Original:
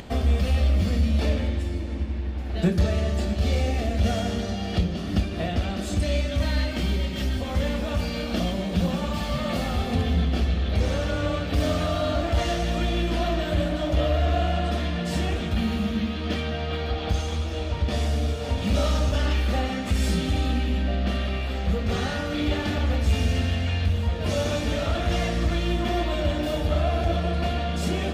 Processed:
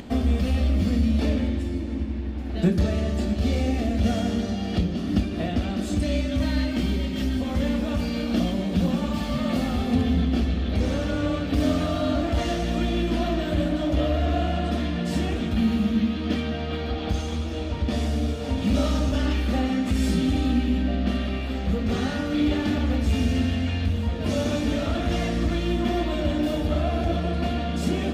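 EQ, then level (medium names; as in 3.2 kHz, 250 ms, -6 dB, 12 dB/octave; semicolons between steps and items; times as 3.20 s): peaking EQ 260 Hz +10 dB 0.7 oct; -2.0 dB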